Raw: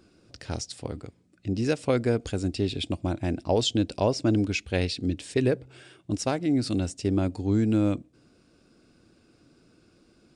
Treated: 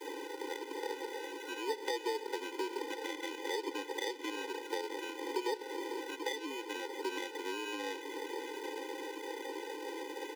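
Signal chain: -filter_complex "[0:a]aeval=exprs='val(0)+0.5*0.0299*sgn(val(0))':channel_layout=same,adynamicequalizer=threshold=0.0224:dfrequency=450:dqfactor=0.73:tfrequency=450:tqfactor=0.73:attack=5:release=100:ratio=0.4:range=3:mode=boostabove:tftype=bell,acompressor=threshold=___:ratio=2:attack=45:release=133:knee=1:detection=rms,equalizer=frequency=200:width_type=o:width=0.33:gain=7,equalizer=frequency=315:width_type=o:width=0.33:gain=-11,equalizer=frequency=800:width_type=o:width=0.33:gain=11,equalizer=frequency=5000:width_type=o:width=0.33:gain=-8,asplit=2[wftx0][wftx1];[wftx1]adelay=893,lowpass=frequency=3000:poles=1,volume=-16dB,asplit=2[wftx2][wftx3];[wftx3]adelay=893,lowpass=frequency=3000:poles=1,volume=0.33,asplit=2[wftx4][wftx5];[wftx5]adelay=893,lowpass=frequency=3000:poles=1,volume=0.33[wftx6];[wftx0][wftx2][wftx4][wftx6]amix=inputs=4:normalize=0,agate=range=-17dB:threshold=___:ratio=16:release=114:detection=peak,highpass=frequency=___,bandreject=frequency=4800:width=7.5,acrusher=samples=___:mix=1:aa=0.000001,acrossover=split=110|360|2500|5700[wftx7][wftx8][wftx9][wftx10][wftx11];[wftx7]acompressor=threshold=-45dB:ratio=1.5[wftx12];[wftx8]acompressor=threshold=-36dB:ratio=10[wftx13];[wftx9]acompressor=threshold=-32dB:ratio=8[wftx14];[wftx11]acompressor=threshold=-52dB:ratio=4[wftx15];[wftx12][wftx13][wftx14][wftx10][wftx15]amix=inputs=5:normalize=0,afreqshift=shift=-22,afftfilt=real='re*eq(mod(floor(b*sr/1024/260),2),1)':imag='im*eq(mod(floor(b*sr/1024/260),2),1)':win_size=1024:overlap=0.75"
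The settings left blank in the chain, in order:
-34dB, -49dB, 58, 32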